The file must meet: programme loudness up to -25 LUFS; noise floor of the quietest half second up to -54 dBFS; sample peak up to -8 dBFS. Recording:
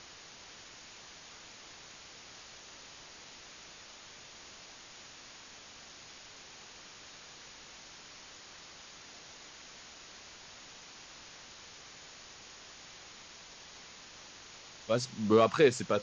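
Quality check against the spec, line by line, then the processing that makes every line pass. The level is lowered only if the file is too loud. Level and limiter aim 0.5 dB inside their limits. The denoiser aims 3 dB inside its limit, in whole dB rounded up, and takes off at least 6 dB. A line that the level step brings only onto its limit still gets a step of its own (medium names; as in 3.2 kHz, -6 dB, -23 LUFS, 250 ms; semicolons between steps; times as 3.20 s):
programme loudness -28.0 LUFS: pass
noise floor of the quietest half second -52 dBFS: fail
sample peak -12.0 dBFS: pass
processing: noise reduction 6 dB, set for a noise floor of -52 dBFS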